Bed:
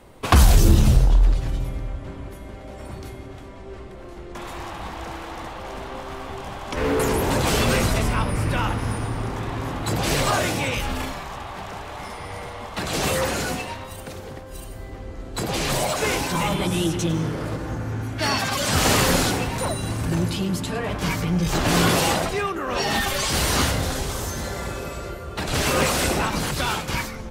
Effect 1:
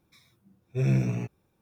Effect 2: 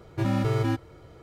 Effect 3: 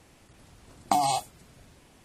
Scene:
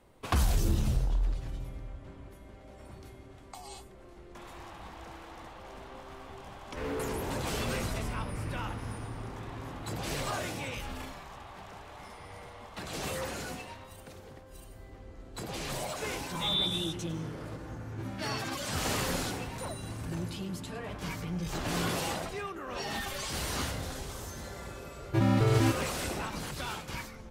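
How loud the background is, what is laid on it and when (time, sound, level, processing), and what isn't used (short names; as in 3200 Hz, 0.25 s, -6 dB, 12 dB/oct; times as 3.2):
bed -13 dB
2.62 add 3 -16.5 dB + HPF 1200 Hz
15.66 add 1 -8 dB + inverted band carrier 3700 Hz
17.8 add 2 -14.5 dB
24.96 add 2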